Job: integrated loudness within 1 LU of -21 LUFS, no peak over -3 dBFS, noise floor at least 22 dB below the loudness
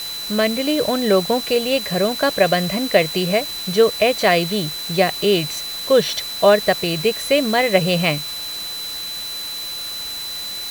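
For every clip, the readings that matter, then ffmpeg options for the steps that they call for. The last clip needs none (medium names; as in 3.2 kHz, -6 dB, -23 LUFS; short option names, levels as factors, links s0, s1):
steady tone 4 kHz; tone level -27 dBFS; noise floor -29 dBFS; noise floor target -41 dBFS; loudness -19.0 LUFS; peak level -1.5 dBFS; loudness target -21.0 LUFS
-> -af "bandreject=f=4000:w=30"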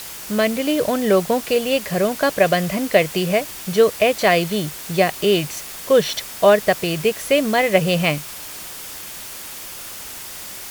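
steady tone not found; noise floor -34 dBFS; noise floor target -41 dBFS
-> -af "afftdn=nr=7:nf=-34"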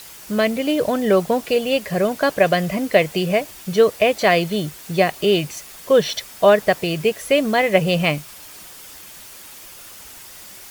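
noise floor -40 dBFS; noise floor target -41 dBFS
-> -af "afftdn=nr=6:nf=-40"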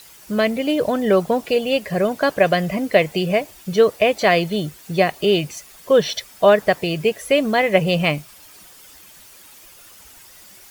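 noise floor -45 dBFS; loudness -19.0 LUFS; peak level -1.5 dBFS; loudness target -21.0 LUFS
-> -af "volume=0.794"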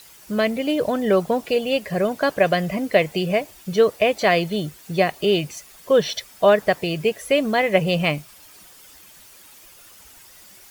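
loudness -21.0 LUFS; peak level -3.5 dBFS; noise floor -47 dBFS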